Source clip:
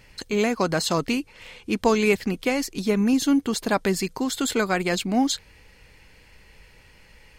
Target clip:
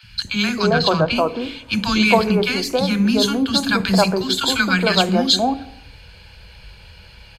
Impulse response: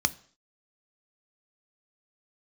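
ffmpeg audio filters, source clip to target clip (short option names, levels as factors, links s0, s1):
-filter_complex "[0:a]asplit=3[s0][s1][s2];[s0]afade=t=out:st=0.69:d=0.02[s3];[s1]adynamicsmooth=sensitivity=1:basefreq=2600,afade=t=in:st=0.69:d=0.02,afade=t=out:st=1.14:d=0.02[s4];[s2]afade=t=in:st=1.14:d=0.02[s5];[s3][s4][s5]amix=inputs=3:normalize=0,acrossover=split=260|1200[s6][s7][s8];[s6]adelay=30[s9];[s7]adelay=270[s10];[s9][s10][s8]amix=inputs=3:normalize=0,asplit=2[s11][s12];[1:a]atrim=start_sample=2205,asetrate=29988,aresample=44100[s13];[s12][s13]afir=irnorm=-1:irlink=0,volume=1[s14];[s11][s14]amix=inputs=2:normalize=0,volume=0.75"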